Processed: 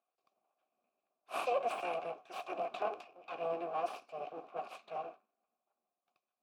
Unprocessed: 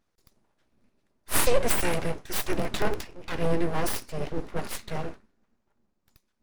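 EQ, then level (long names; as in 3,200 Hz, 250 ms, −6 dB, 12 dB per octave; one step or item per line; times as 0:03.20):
formant filter a
high-pass filter 180 Hz 12 dB per octave
+2.5 dB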